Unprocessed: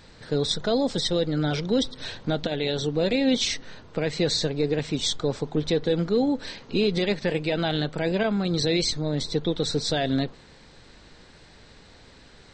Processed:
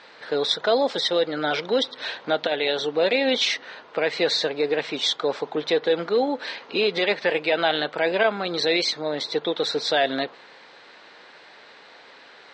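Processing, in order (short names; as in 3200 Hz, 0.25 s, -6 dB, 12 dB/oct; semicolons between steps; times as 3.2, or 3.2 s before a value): BPF 590–3200 Hz; gain +8.5 dB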